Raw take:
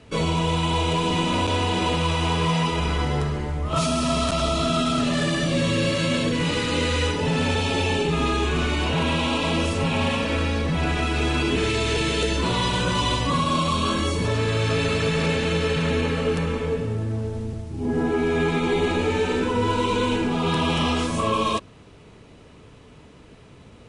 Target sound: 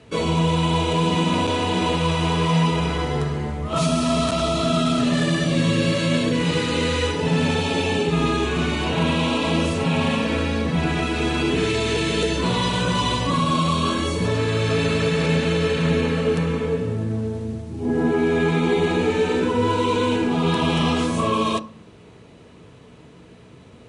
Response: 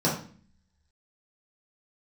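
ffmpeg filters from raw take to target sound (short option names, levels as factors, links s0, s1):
-filter_complex "[0:a]highpass=56,asplit=2[s0][s1];[1:a]atrim=start_sample=2205,lowpass=f=6900:w=0.5412,lowpass=f=6900:w=1.3066[s2];[s1][s2]afir=irnorm=-1:irlink=0,volume=0.0631[s3];[s0][s3]amix=inputs=2:normalize=0"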